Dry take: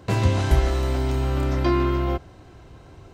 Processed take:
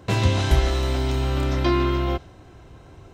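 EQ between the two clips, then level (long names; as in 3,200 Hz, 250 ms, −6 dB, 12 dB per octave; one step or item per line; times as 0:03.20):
notch filter 4,600 Hz, Q 12
dynamic equaliser 3,900 Hz, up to +7 dB, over −50 dBFS, Q 0.98
0.0 dB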